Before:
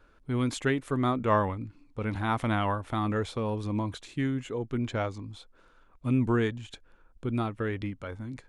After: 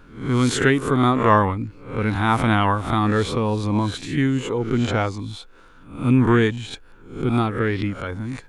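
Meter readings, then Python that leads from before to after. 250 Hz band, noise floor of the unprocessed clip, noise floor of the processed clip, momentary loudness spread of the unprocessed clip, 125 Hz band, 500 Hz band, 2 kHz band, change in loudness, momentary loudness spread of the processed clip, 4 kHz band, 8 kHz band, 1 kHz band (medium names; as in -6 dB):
+9.5 dB, -60 dBFS, -47 dBFS, 13 LU, +9.5 dB, +8.5 dB, +11.0 dB, +9.5 dB, 13 LU, +11.5 dB, +12.0 dB, +10.0 dB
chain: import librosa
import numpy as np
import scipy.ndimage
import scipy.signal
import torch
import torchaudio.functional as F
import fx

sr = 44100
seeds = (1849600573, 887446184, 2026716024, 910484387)

y = fx.spec_swells(x, sr, rise_s=0.48)
y = fx.peak_eq(y, sr, hz=600.0, db=-6.0, octaves=0.28)
y = y * librosa.db_to_amplitude(9.0)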